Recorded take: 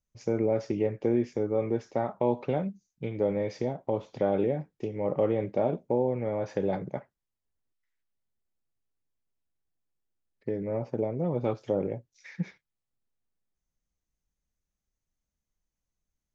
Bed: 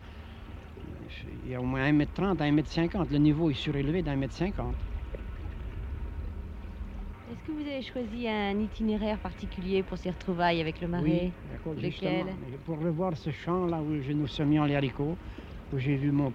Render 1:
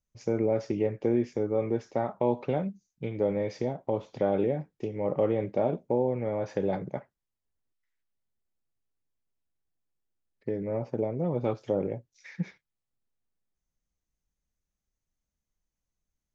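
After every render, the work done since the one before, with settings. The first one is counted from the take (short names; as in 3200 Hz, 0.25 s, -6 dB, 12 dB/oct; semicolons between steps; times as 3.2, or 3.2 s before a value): nothing audible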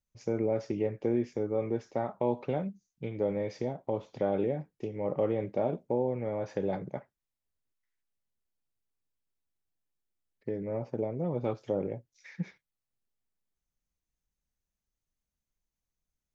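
gain -3 dB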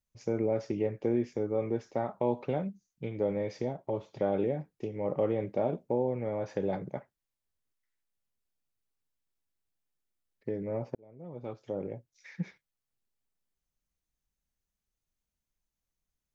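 3.77–4.21 notch comb 250 Hz; 10.95–12.32 fade in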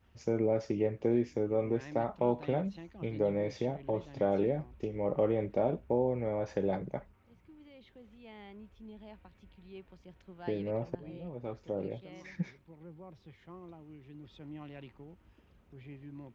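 add bed -20.5 dB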